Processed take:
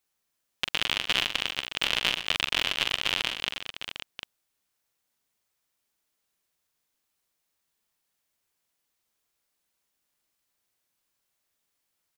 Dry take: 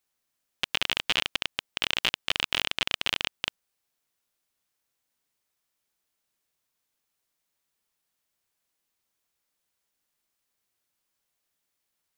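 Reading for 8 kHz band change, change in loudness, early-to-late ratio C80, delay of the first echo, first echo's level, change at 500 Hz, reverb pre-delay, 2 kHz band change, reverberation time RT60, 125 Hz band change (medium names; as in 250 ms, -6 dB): +1.5 dB, +1.0 dB, no reverb, 44 ms, -7.5 dB, +1.5 dB, no reverb, +1.5 dB, no reverb, +1.5 dB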